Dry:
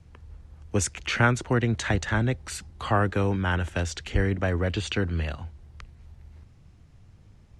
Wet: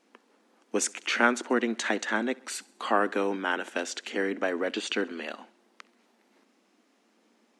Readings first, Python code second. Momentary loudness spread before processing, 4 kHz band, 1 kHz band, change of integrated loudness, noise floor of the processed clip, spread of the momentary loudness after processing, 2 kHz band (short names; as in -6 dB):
10 LU, 0.0 dB, 0.0 dB, -2.5 dB, -68 dBFS, 11 LU, 0.0 dB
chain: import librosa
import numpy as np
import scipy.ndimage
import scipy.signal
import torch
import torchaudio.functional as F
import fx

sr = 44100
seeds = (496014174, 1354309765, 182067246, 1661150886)

p1 = fx.brickwall_highpass(x, sr, low_hz=210.0)
y = p1 + fx.echo_feedback(p1, sr, ms=66, feedback_pct=55, wet_db=-23.5, dry=0)